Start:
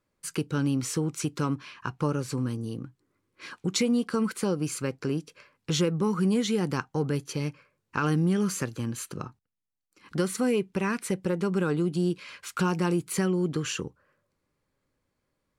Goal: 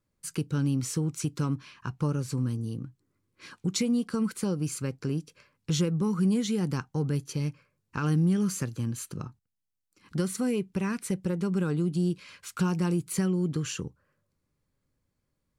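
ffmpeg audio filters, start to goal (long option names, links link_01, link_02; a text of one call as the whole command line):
ffmpeg -i in.wav -af "bass=frequency=250:gain=9,treble=frequency=4000:gain=5,volume=-6dB" out.wav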